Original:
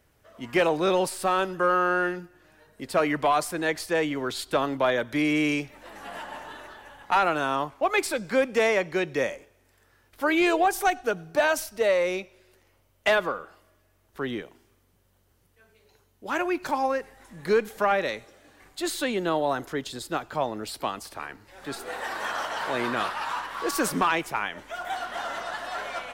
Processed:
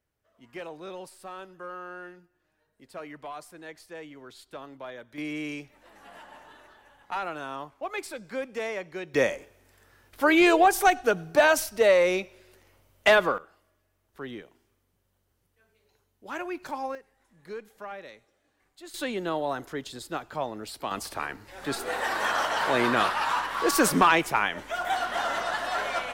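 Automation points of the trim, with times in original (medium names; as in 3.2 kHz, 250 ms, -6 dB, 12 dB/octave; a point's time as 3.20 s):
-17 dB
from 5.18 s -10 dB
from 9.14 s +3 dB
from 13.38 s -7.5 dB
from 16.95 s -16.5 dB
from 18.94 s -4 dB
from 20.91 s +4 dB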